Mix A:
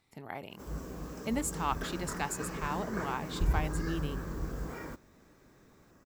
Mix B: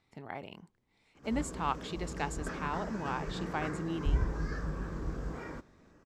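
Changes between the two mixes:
background: entry +0.65 s; master: add air absorption 77 m

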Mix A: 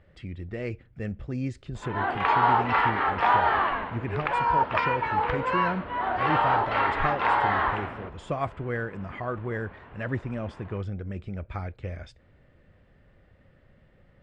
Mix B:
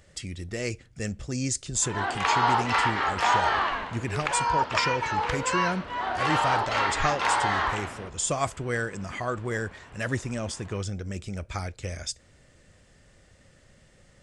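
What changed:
background -4.0 dB; master: remove air absorption 480 m

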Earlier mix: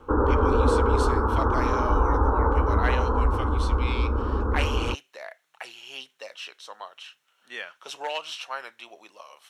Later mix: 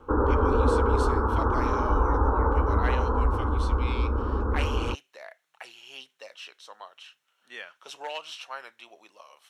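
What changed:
speech -4.5 dB; reverb: off

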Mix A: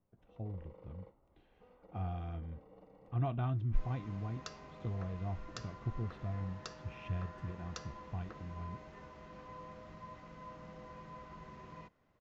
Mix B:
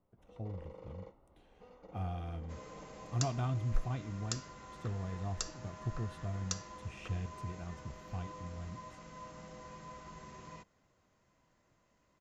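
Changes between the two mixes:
first sound +5.0 dB; second sound: entry -1.25 s; master: remove air absorption 200 m

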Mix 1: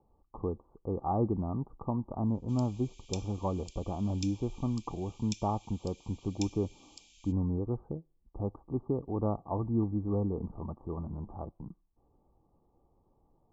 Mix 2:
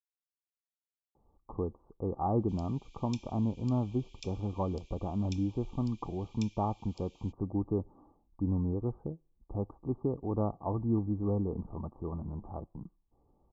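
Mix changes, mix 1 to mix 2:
speech: entry +1.15 s; master: add air absorption 130 m

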